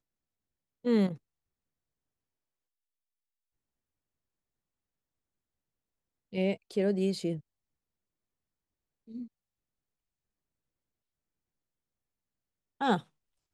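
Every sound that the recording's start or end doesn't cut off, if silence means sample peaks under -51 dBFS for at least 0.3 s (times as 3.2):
0.84–1.17
6.33–7.4
9.08–9.27
12.81–13.02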